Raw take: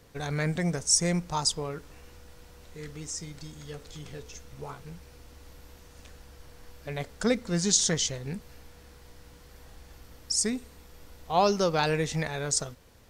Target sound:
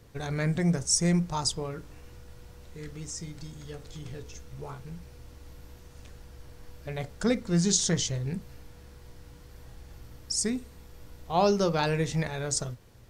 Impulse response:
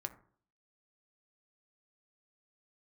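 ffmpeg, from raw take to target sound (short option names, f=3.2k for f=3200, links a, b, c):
-filter_complex "[0:a]asplit=2[a][b];[1:a]atrim=start_sample=2205,atrim=end_sample=3087,lowshelf=f=350:g=10.5[c];[b][c]afir=irnorm=-1:irlink=0,volume=1dB[d];[a][d]amix=inputs=2:normalize=0,volume=-7.5dB"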